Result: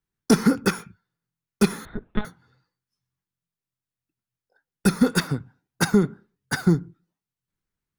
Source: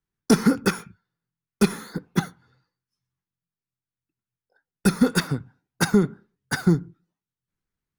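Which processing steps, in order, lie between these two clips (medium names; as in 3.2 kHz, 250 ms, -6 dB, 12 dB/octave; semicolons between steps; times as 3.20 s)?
1.85–2.25 s: monotone LPC vocoder at 8 kHz 210 Hz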